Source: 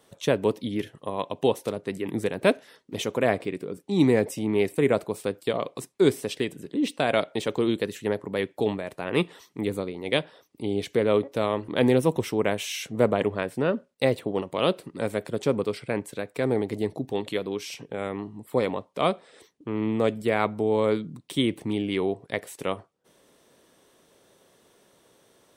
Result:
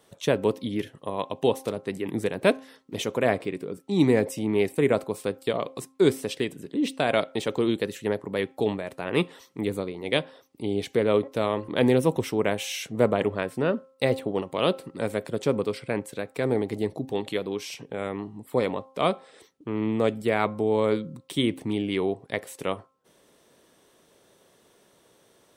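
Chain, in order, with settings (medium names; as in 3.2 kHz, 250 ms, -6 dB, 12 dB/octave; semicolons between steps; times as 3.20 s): de-hum 264.9 Hz, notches 5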